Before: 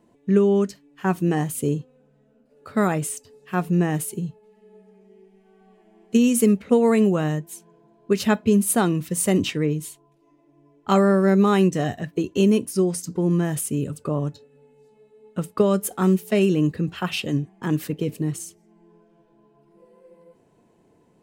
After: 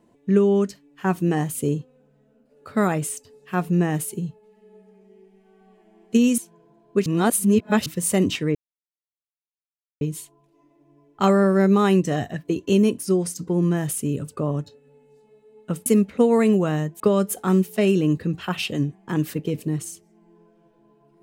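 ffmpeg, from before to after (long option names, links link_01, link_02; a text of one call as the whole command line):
ffmpeg -i in.wav -filter_complex "[0:a]asplit=7[link_01][link_02][link_03][link_04][link_05][link_06][link_07];[link_01]atrim=end=6.382[link_08];[link_02]atrim=start=7.518:end=8.202[link_09];[link_03]atrim=start=8.198:end=9.002,asetpts=PTS-STARTPTS,areverse[link_10];[link_04]atrim=start=8.998:end=9.69,asetpts=PTS-STARTPTS,afade=type=out:start_time=0.688:duration=0.004:curve=hsin,apad=pad_dur=1.46[link_11];[link_05]atrim=start=9.69:end=15.542,asetpts=PTS-STARTPTS,afade=type=in:duration=0.004:curve=hsin[link_12];[link_06]atrim=start=6.378:end=7.522[link_13];[link_07]atrim=start=15.538[link_14];[link_08][link_09]acrossfade=duration=0.004:curve1=hsin:curve2=hsin[link_15];[link_15][link_10]acrossfade=duration=0.004:curve1=hsin:curve2=hsin[link_16];[link_11][link_12]concat=n=2:v=0:a=1[link_17];[link_16][link_17]acrossfade=duration=0.004:curve1=hsin:curve2=hsin[link_18];[link_18][link_13]acrossfade=duration=0.004:curve1=hsin:curve2=hsin[link_19];[link_19][link_14]acrossfade=duration=0.004:curve1=hsin:curve2=hsin" out.wav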